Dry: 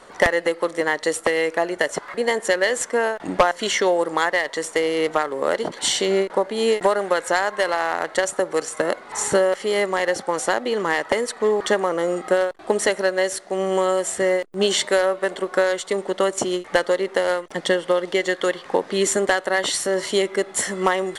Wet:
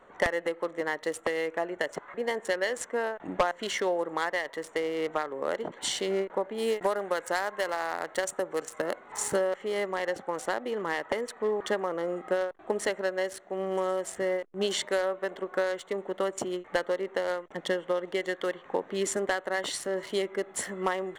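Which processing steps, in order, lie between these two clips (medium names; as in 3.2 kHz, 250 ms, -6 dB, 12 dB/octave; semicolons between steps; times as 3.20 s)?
local Wiener filter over 9 samples; 6.58–9.36 s: treble shelf 7.8 kHz +9.5 dB; trim -9 dB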